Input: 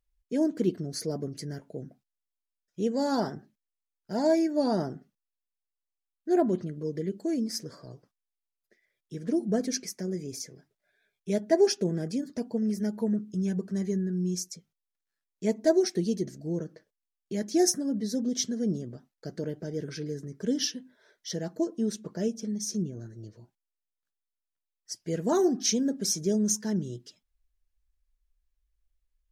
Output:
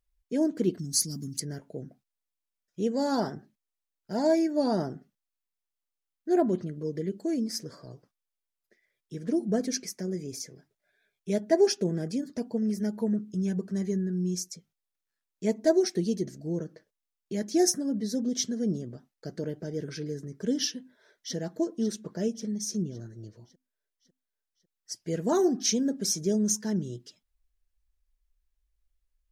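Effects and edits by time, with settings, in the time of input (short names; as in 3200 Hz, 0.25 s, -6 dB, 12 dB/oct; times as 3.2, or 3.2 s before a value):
0.79–1.4 EQ curve 270 Hz 0 dB, 510 Hz -26 dB, 7000 Hz +14 dB
20.75–21.35 echo throw 0.55 s, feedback 55%, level -12 dB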